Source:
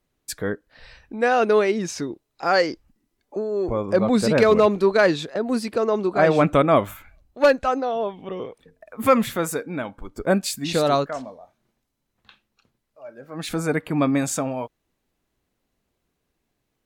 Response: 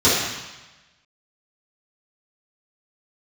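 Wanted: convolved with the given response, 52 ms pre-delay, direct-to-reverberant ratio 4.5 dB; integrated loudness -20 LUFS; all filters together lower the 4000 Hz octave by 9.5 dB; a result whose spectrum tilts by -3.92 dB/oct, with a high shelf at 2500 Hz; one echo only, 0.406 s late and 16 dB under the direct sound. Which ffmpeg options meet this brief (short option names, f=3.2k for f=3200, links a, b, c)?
-filter_complex "[0:a]highshelf=f=2.5k:g=-3.5,equalizer=f=4k:t=o:g=-8.5,aecho=1:1:406:0.158,asplit=2[a][b];[1:a]atrim=start_sample=2205,adelay=52[c];[b][c]afir=irnorm=-1:irlink=0,volume=-26.5dB[d];[a][d]amix=inputs=2:normalize=0"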